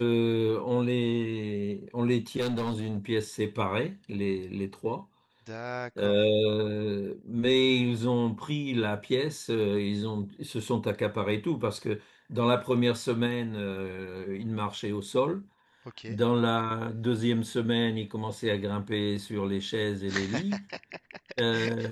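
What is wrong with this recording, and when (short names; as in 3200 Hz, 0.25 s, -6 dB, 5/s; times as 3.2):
2.4–2.98 clipped -26 dBFS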